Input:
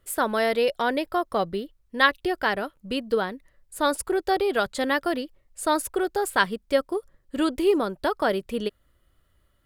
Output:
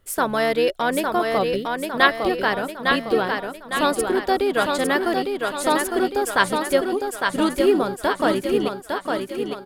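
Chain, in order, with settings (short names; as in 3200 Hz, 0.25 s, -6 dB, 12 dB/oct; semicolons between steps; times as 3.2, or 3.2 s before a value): thinning echo 0.856 s, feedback 51%, high-pass 170 Hz, level -4 dB; harmoniser -7 st -12 dB; gain +2.5 dB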